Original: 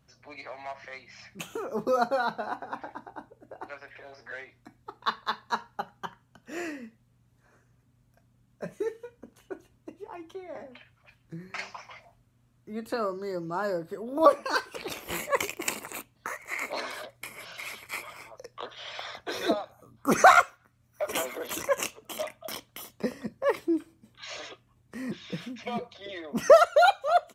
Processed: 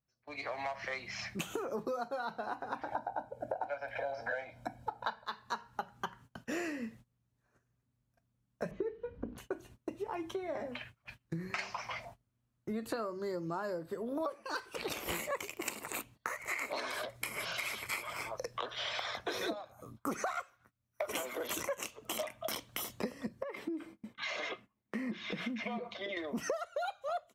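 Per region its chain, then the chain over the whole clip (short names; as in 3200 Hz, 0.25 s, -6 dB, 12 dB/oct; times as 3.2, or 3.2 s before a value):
2.92–5.26 bell 530 Hz +15 dB 2.1 oct + comb 1.3 ms, depth 92%
8.71–9.38 LPF 4400 Hz 24 dB/oct + tilt -3 dB/oct + notches 60/120/180/240/300/360/420 Hz
23.43–26.17 tone controls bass -13 dB, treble -11 dB + compressor 10:1, threshold -40 dBFS + small resonant body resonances 210/2100 Hz, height 12 dB, ringing for 55 ms
whole clip: AGC gain up to 10 dB; gate -48 dBFS, range -22 dB; compressor 10:1, threshold -32 dBFS; gain -2.5 dB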